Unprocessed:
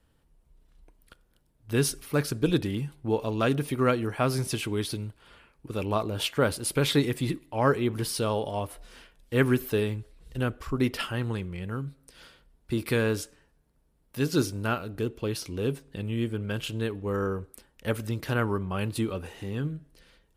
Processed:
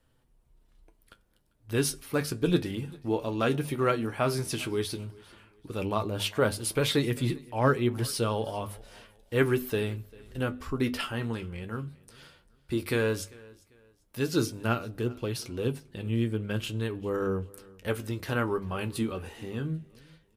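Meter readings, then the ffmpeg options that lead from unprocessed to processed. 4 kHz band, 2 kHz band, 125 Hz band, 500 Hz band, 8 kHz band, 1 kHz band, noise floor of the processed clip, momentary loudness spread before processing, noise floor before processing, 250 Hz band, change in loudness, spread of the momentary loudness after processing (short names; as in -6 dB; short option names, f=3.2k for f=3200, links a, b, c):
-1.0 dB, -1.0 dB, -2.0 dB, -1.0 dB, -1.0 dB, -1.0 dB, -67 dBFS, 10 LU, -67 dBFS, -1.5 dB, -1.5 dB, 11 LU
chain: -filter_complex "[0:a]bandreject=f=50:t=h:w=6,bandreject=f=100:t=h:w=6,bandreject=f=150:t=h:w=6,bandreject=f=200:t=h:w=6,bandreject=f=250:t=h:w=6,flanger=delay=7.7:depth=5.6:regen=54:speed=0.13:shape=triangular,asplit=2[a][b];[b]aecho=0:1:395|790:0.0668|0.0201[c];[a][c]amix=inputs=2:normalize=0,volume=3dB"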